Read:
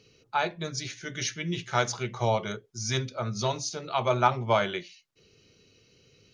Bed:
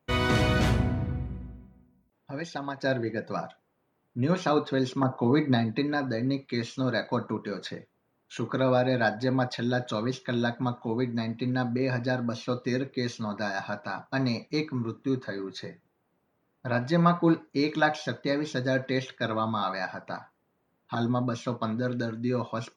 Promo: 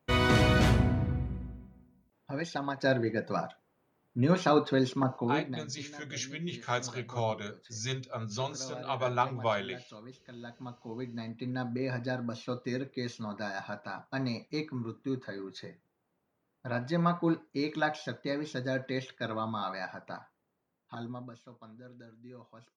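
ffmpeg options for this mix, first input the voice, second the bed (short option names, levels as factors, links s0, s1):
-filter_complex "[0:a]adelay=4950,volume=0.501[s0];[1:a]volume=4.73,afade=t=out:st=4.75:d=0.85:silence=0.105925,afade=t=in:st=10.37:d=1.41:silence=0.211349,afade=t=out:st=20.31:d=1.12:silence=0.158489[s1];[s0][s1]amix=inputs=2:normalize=0"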